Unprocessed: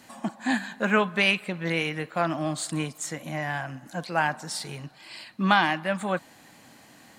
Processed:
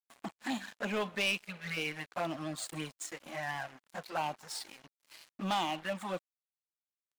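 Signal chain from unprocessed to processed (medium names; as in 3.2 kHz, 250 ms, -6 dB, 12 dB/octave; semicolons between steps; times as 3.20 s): median filter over 3 samples; bass shelf 61 Hz -6.5 dB; touch-sensitive flanger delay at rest 10 ms, full sweep at -22 dBFS; saturation -23.5 dBFS, distortion -11 dB; spectral replace 1.48–1.75 s, 210–1100 Hz before; crossover distortion -44.5 dBFS; bass shelf 320 Hz -9 dB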